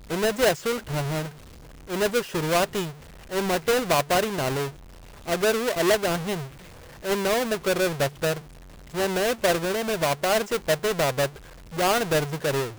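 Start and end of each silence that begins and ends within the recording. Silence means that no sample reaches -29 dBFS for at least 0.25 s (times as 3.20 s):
1.26–1.92 s
2.86–3.33 s
4.67–5.28 s
6.37–7.05 s
8.33–8.96 s
11.26–11.78 s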